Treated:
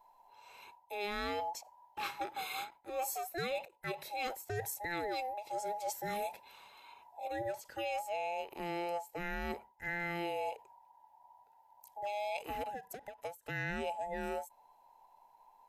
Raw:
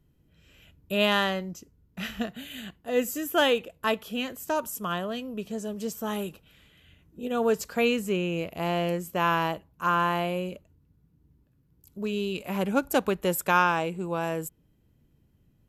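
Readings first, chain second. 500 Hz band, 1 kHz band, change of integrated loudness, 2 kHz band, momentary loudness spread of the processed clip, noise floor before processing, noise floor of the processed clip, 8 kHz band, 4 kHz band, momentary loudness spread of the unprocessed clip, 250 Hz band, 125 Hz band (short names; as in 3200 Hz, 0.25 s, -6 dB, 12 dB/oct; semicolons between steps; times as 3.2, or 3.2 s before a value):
-11.5 dB, -9.0 dB, -11.5 dB, -10.0 dB, 13 LU, -66 dBFS, -66 dBFS, -8.0 dB, -13.5 dB, 13 LU, -17.0 dB, -14.0 dB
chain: band inversion scrambler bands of 1000 Hz; reverse; compressor 16:1, threshold -35 dBFS, peak gain reduction 19 dB; reverse; ending taper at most 210 dB/s; gain +1 dB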